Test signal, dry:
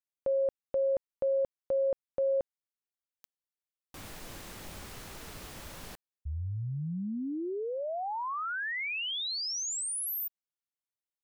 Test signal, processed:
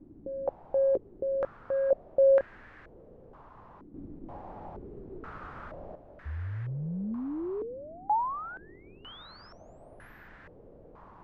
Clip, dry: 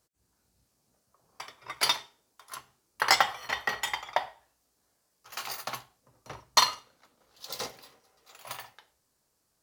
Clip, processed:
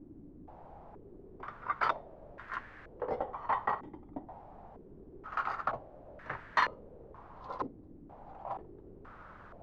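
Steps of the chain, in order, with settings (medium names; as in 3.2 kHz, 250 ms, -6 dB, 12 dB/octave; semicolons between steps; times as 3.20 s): transient shaper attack -1 dB, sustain -5 dB; saturation -22.5 dBFS; added noise pink -53 dBFS; step-sequenced low-pass 2.1 Hz 300–1700 Hz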